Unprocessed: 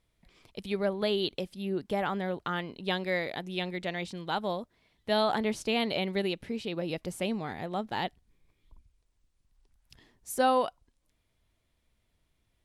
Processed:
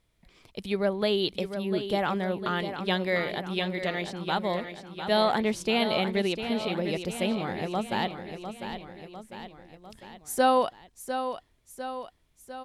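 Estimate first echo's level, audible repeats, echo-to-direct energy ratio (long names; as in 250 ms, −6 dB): −9.0 dB, 4, −7.5 dB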